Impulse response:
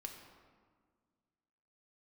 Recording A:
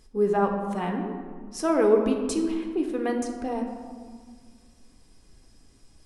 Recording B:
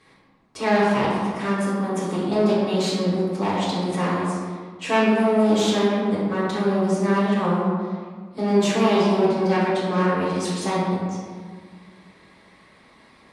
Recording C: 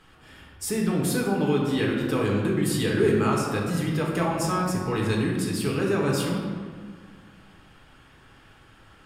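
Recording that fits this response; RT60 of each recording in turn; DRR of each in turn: A; 1.7, 1.7, 1.7 seconds; 2.5, −8.5, −3.0 decibels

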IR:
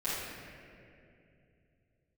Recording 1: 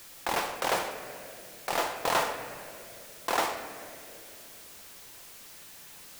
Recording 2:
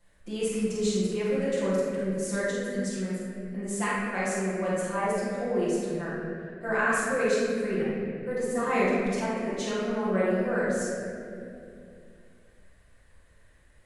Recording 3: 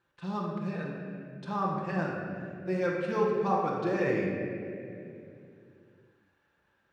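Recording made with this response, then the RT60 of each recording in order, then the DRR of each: 2; 2.5, 2.6, 2.6 seconds; 5.5, −12.5, −4.0 decibels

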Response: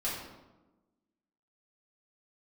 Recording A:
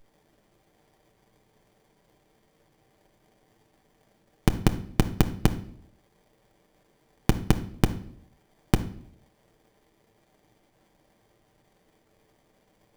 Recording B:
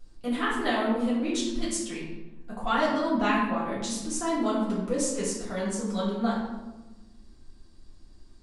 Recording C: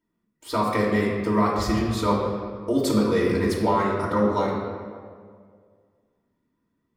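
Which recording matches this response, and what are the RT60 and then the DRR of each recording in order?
B; 0.60, 1.1, 2.0 seconds; 5.0, −9.0, −5.5 decibels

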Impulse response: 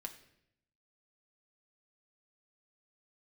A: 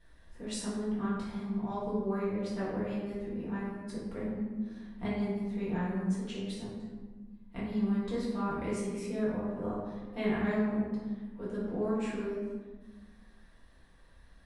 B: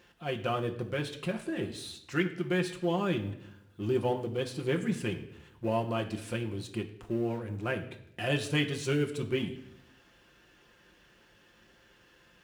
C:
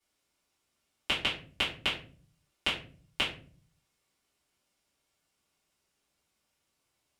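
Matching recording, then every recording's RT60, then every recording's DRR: B; 1.4, 0.75, 0.45 seconds; −10.0, 2.5, −11.5 decibels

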